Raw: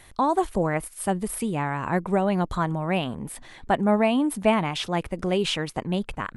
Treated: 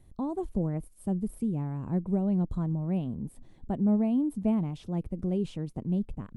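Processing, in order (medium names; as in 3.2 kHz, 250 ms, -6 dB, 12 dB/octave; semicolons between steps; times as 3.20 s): FFT filter 220 Hz 0 dB, 1.7 kHz -26 dB, 8.2 kHz -19 dB; trim -1 dB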